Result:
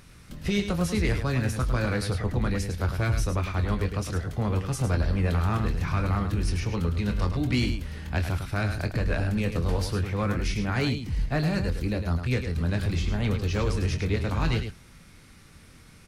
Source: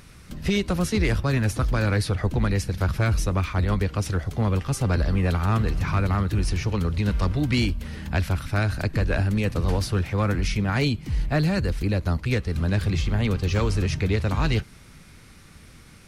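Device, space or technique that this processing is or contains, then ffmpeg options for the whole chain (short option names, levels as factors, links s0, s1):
slapback doubling: -filter_complex "[0:a]asplit=3[s0][s1][s2];[s1]adelay=24,volume=0.355[s3];[s2]adelay=105,volume=0.398[s4];[s0][s3][s4]amix=inputs=3:normalize=0,volume=0.631"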